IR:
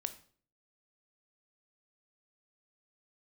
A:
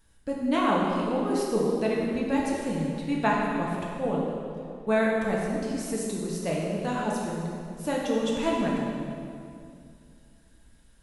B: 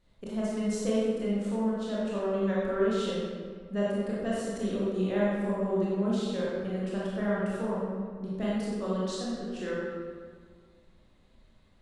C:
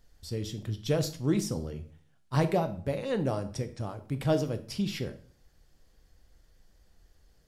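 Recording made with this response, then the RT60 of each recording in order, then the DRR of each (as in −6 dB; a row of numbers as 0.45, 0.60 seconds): C; 2.4, 1.8, 0.50 seconds; −4.5, −8.0, 9.5 decibels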